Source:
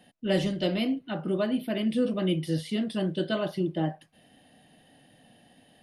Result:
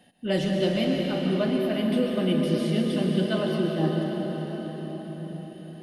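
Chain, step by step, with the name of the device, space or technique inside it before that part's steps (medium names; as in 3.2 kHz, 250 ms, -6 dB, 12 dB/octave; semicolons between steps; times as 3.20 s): cathedral (reverberation RT60 5.8 s, pre-delay 107 ms, DRR -0.5 dB)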